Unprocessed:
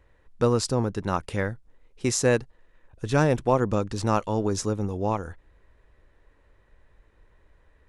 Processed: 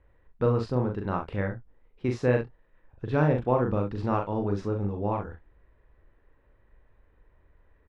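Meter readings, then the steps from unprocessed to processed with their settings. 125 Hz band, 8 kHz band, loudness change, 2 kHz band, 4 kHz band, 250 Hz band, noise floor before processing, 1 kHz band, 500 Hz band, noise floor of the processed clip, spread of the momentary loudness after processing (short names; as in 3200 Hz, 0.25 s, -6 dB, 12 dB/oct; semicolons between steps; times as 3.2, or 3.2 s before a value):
-0.5 dB, under -25 dB, -2.5 dB, -4.5 dB, under -10 dB, -2.0 dB, -62 dBFS, -3.0 dB, -2.5 dB, -64 dBFS, 9 LU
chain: air absorption 380 m; early reflections 40 ms -4 dB, 66 ms -12 dB; gain -3 dB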